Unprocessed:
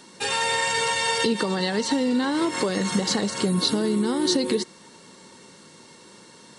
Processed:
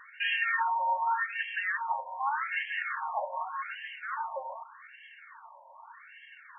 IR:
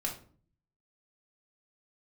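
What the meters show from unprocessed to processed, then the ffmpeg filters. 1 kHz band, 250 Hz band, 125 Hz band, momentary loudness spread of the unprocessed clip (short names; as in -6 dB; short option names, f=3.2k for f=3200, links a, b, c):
-1.0 dB, under -40 dB, under -40 dB, 3 LU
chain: -filter_complex "[0:a]asplit=2[a][b];[b]highpass=f=720:p=1,volume=19dB,asoftclip=type=tanh:threshold=-10dB[c];[a][c]amix=inputs=2:normalize=0,lowpass=f=2.7k:p=1,volume=-6dB,afftfilt=real='re*between(b*sr/1024,740*pow(2300/740,0.5+0.5*sin(2*PI*0.84*pts/sr))/1.41,740*pow(2300/740,0.5+0.5*sin(2*PI*0.84*pts/sr))*1.41)':imag='im*between(b*sr/1024,740*pow(2300/740,0.5+0.5*sin(2*PI*0.84*pts/sr))/1.41,740*pow(2300/740,0.5+0.5*sin(2*PI*0.84*pts/sr))*1.41)':win_size=1024:overlap=0.75,volume=-4.5dB"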